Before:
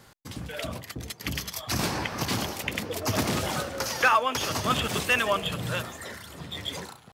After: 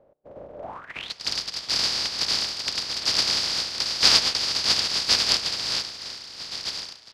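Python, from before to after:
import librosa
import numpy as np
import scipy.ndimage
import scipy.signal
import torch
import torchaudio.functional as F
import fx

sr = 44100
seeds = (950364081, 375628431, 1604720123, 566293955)

y = fx.spec_flatten(x, sr, power=0.1)
y = fx.filter_sweep_lowpass(y, sr, from_hz=570.0, to_hz=4800.0, start_s=0.6, end_s=1.14, q=7.0)
y = fx.rev_spring(y, sr, rt60_s=2.9, pass_ms=(32,), chirp_ms=50, drr_db=18.0)
y = F.gain(torch.from_numpy(y), -1.0).numpy()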